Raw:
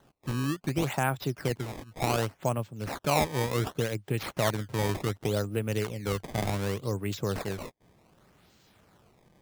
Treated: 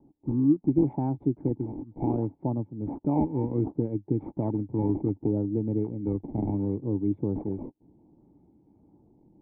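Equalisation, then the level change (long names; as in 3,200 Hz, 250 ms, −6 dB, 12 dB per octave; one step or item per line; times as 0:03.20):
formant resonators in series u
low-shelf EQ 480 Hz +8 dB
+7.0 dB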